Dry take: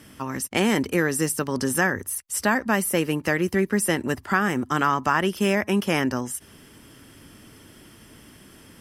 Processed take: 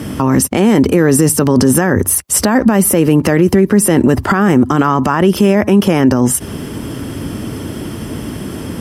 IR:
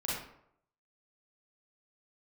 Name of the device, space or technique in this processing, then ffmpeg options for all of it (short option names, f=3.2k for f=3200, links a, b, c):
mastering chain: -af "highpass=50,equalizer=f=1.8k:t=o:w=0.77:g=-3,acompressor=threshold=-25dB:ratio=2,tiltshelf=f=1.1k:g=5.5,alimiter=level_in=23dB:limit=-1dB:release=50:level=0:latency=1,volume=-1dB"